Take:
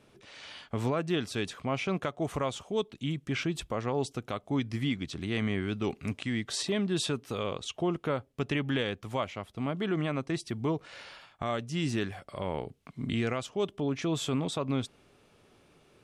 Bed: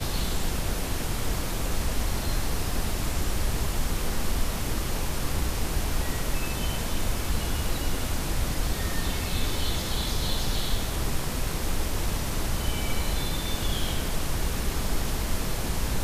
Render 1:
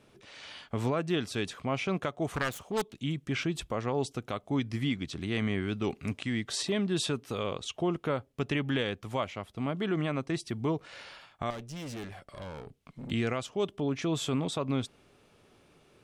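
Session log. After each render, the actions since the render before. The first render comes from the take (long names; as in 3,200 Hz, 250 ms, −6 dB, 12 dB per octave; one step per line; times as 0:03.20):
0:02.35–0:02.97: phase distortion by the signal itself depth 0.45 ms
0:11.50–0:13.11: tube saturation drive 37 dB, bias 0.6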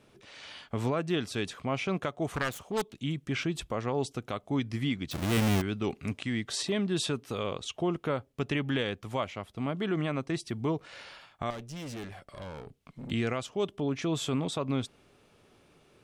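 0:05.11–0:05.62: each half-wave held at its own peak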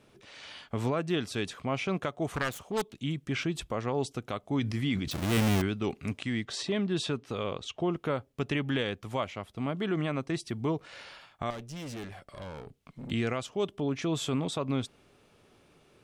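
0:04.60–0:05.72: level that may fall only so fast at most 41 dB per second
0:06.45–0:07.97: high-frequency loss of the air 61 metres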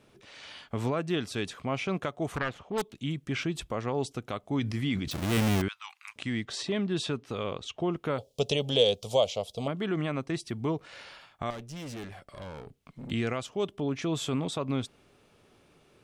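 0:02.38–0:02.78: low-pass filter 3,100 Hz
0:05.68–0:06.16: elliptic high-pass filter 950 Hz, stop band 50 dB
0:08.18–0:09.68: drawn EQ curve 190 Hz 0 dB, 330 Hz −7 dB, 470 Hz +13 dB, 670 Hz +9 dB, 1,700 Hz −18 dB, 3,300 Hz +12 dB, 5,300 Hz +15 dB, 12,000 Hz +9 dB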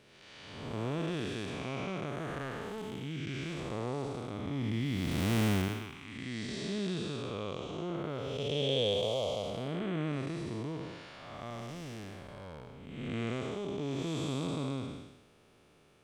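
spectrum smeared in time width 395 ms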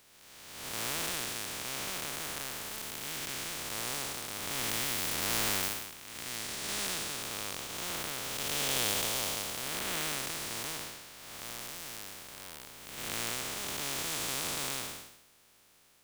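compressing power law on the bin magnitudes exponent 0.18
soft clipping −18 dBFS, distortion −17 dB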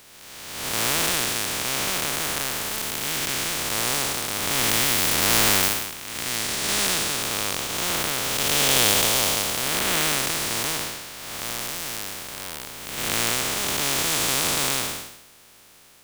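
level +12 dB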